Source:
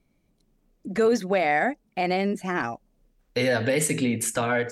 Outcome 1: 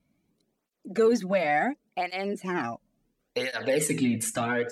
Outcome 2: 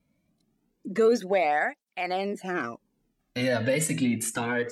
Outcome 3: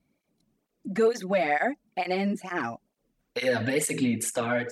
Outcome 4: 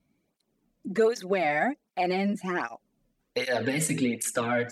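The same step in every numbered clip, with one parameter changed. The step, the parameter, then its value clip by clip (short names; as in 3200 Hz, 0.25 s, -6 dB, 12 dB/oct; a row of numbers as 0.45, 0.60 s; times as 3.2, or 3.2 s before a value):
tape flanging out of phase, nulls at: 0.71, 0.27, 2.2, 1.3 Hz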